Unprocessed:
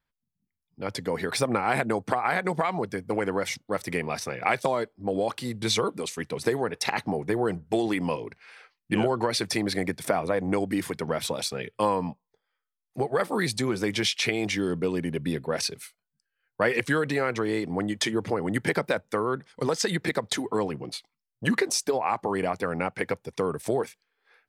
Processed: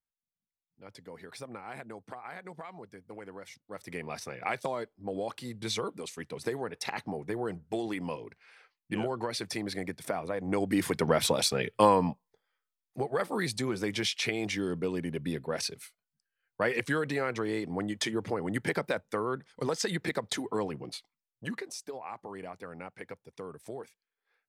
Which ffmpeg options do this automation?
-af "volume=3dB,afade=t=in:st=3.62:d=0.5:silence=0.316228,afade=t=in:st=10.4:d=0.62:silence=0.281838,afade=t=out:st=11.81:d=1.18:silence=0.398107,afade=t=out:st=20.94:d=0.68:silence=0.316228"

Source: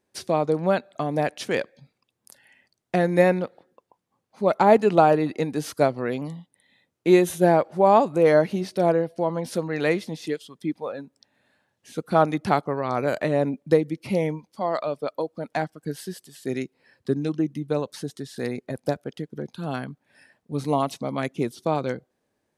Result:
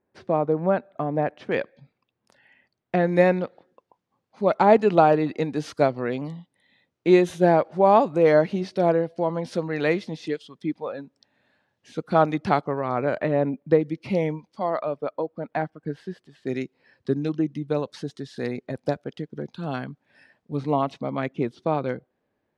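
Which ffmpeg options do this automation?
-af "asetnsamples=n=441:p=0,asendcmd='1.52 lowpass f 3000;3.07 lowpass f 5100;12.71 lowpass f 2500;13.81 lowpass f 4800;14.7 lowpass f 2200;16.47 lowpass f 5100;20.57 lowpass f 2900',lowpass=1.6k"

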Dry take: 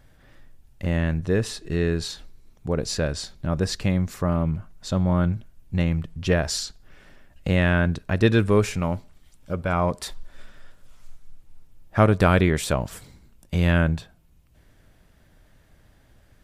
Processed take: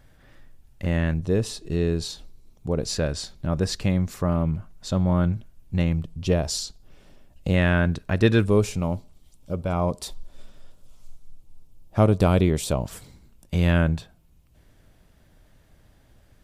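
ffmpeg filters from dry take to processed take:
-af "asetnsamples=n=441:p=0,asendcmd='1.14 equalizer g -9.5;2.8 equalizer g -3;5.93 equalizer g -12;7.54 equalizer g -1;8.45 equalizer g -13;12.84 equalizer g -3',equalizer=f=1.7k:t=o:w=0.98:g=0"

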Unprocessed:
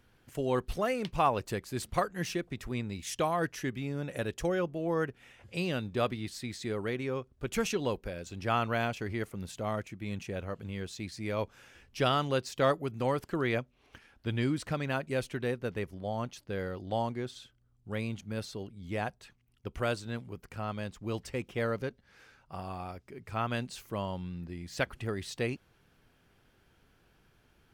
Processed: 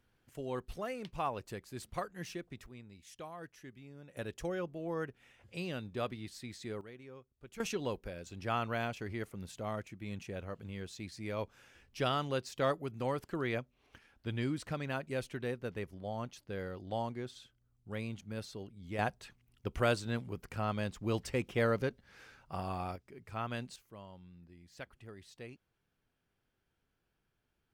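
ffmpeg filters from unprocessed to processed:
-af "asetnsamples=n=441:p=0,asendcmd='2.66 volume volume -17dB;4.17 volume volume -7dB;6.81 volume volume -17.5dB;7.6 volume volume -5dB;18.99 volume volume 1.5dB;22.96 volume volume -6dB;23.76 volume volume -16dB',volume=-9dB"

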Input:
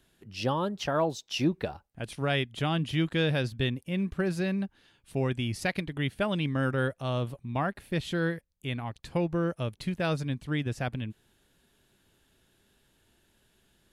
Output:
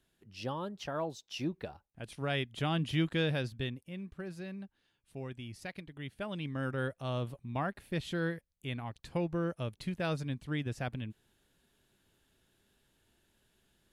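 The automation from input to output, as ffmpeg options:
-af "volume=6dB,afade=t=in:st=1.86:d=1.09:silence=0.473151,afade=t=out:st=2.95:d=1.06:silence=0.281838,afade=t=in:st=5.98:d=1.13:silence=0.375837"

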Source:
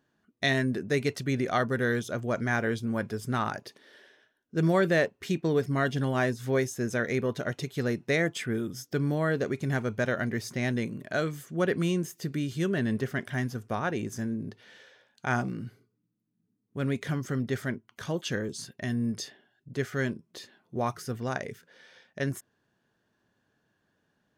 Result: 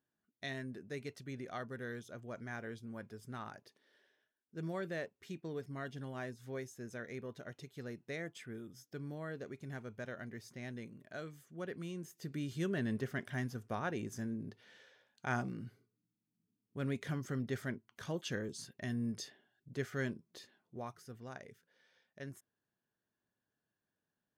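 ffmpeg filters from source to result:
-af "volume=-8dB,afade=t=in:st=11.94:d=0.57:silence=0.375837,afade=t=out:st=20.24:d=0.67:silence=0.375837"

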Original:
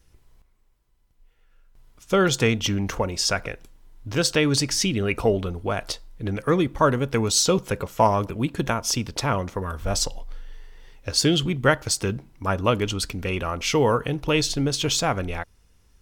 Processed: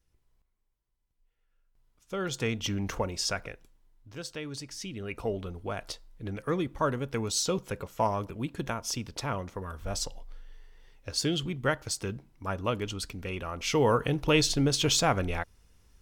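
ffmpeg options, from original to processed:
-af "volume=10.5dB,afade=t=in:st=2.14:d=0.8:silence=0.334965,afade=t=out:st=2.94:d=1.17:silence=0.237137,afade=t=in:st=4.75:d=0.82:silence=0.354813,afade=t=in:st=13.5:d=0.59:silence=0.446684"

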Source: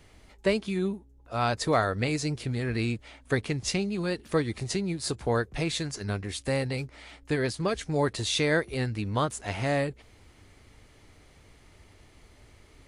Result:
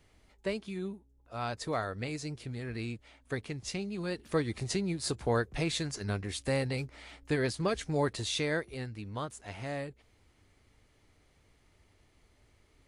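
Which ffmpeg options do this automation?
-af "volume=-2.5dB,afade=t=in:st=3.69:d=0.95:silence=0.473151,afade=t=out:st=7.81:d=1.07:silence=0.398107"

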